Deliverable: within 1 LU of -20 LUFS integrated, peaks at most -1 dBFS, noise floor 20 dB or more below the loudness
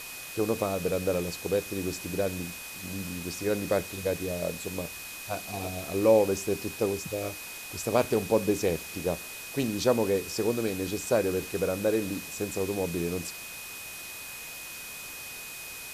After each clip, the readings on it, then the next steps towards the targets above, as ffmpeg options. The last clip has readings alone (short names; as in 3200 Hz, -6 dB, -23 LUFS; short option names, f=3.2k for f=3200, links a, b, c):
steady tone 2500 Hz; tone level -43 dBFS; noise floor -41 dBFS; noise floor target -50 dBFS; loudness -30.0 LUFS; peak -9.0 dBFS; loudness target -20.0 LUFS
-> -af "bandreject=f=2.5k:w=30"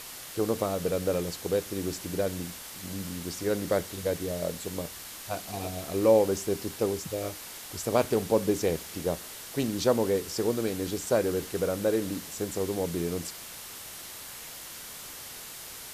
steady tone none; noise floor -43 dBFS; noise floor target -51 dBFS
-> -af "afftdn=nr=8:nf=-43"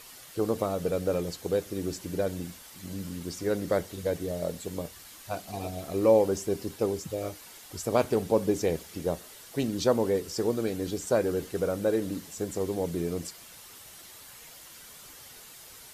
noise floor -49 dBFS; noise floor target -50 dBFS
-> -af "afftdn=nr=6:nf=-49"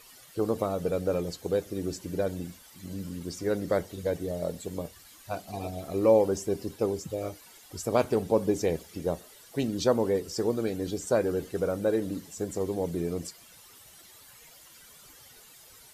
noise floor -53 dBFS; loudness -30.0 LUFS; peak -9.5 dBFS; loudness target -20.0 LUFS
-> -af "volume=10dB,alimiter=limit=-1dB:level=0:latency=1"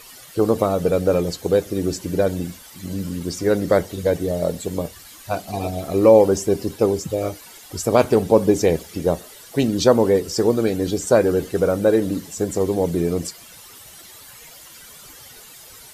loudness -20.0 LUFS; peak -1.0 dBFS; noise floor -43 dBFS